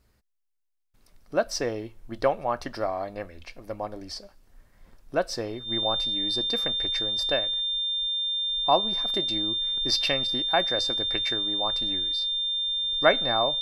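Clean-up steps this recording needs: notch 3600 Hz, Q 30

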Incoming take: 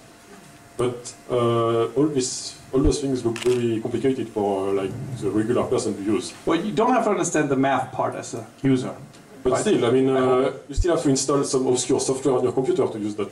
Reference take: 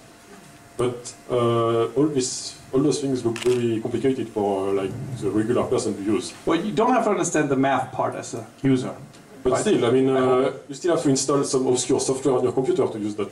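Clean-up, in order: clip repair -10 dBFS; 2.83–2.95 HPF 140 Hz 24 dB/oct; 10.76–10.88 HPF 140 Hz 24 dB/oct

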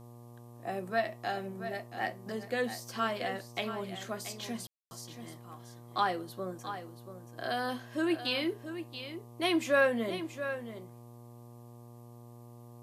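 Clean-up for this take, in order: de-hum 119.2 Hz, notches 10; room tone fill 4.67–4.91; expander -43 dBFS, range -21 dB; inverse comb 0.68 s -10.5 dB

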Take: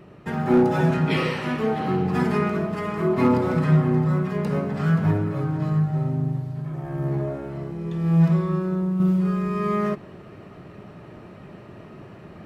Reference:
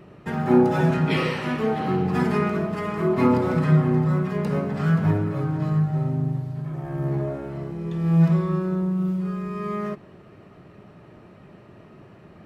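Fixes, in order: clip repair -10.5 dBFS; gain correction -5 dB, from 9

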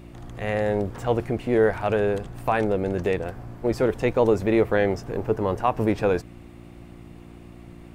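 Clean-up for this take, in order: de-hum 58.2 Hz, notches 6

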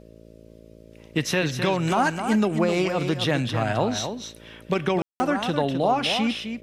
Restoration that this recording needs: de-hum 55.9 Hz, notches 11; room tone fill 5.02–5.2; inverse comb 0.258 s -8 dB

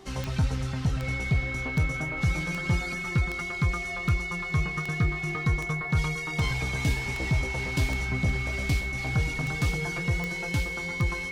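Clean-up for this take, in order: clip repair -17 dBFS; de-click; de-hum 386.4 Hz, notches 3; notch 2200 Hz, Q 30

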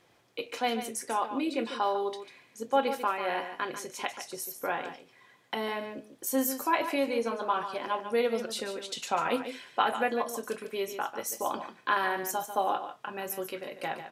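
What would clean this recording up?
inverse comb 0.145 s -10 dB

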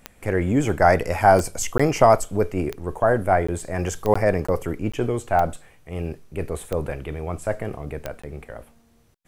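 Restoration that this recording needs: de-click; interpolate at 1.78/3.47/4.14/4.47/4.92/8.22, 15 ms

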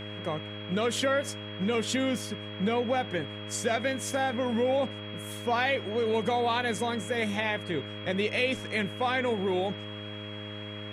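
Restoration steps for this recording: de-hum 104.2 Hz, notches 6; notch 3300 Hz, Q 30; noise print and reduce 30 dB

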